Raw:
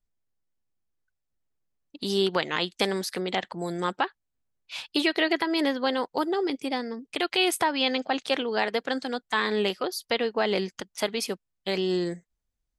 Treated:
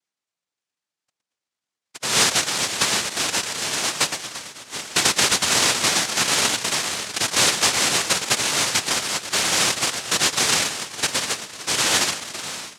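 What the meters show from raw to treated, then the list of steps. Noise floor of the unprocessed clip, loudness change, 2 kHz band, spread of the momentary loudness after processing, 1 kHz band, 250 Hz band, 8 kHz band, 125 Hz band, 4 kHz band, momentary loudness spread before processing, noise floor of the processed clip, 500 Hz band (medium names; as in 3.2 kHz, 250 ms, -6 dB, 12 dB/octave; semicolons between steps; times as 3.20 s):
-82 dBFS, +8.0 dB, +7.5 dB, 9 LU, +3.5 dB, -4.5 dB, +22.5 dB, +4.0 dB, +10.5 dB, 8 LU, under -85 dBFS, -4.0 dB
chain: two-band feedback delay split 370 Hz, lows 557 ms, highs 115 ms, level -9 dB; noise-vocoded speech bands 1; trim +5 dB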